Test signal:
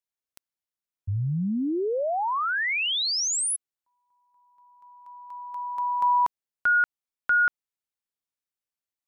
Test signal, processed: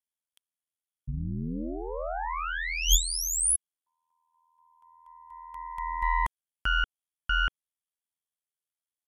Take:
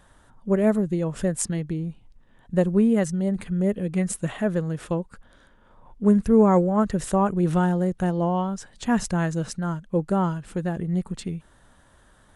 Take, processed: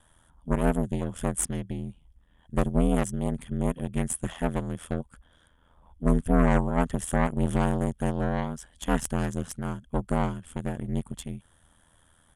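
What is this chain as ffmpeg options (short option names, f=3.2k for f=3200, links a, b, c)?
-af "equalizer=f=3.3k:w=6.5:g=15,aeval=exprs='0.447*(cos(1*acos(clip(val(0)/0.447,-1,1)))-cos(1*PI/2))+0.2*(cos(4*acos(clip(val(0)/0.447,-1,1)))-cos(4*PI/2))':c=same,equalizer=f=400:t=o:w=0.67:g=-5,equalizer=f=4k:t=o:w=0.67:g=-8,equalizer=f=10k:t=o:w=0.67:g=10,aeval=exprs='val(0)*sin(2*PI*41*n/s)':c=same,asoftclip=type=tanh:threshold=-4dB,aresample=32000,aresample=44100,volume=-3.5dB"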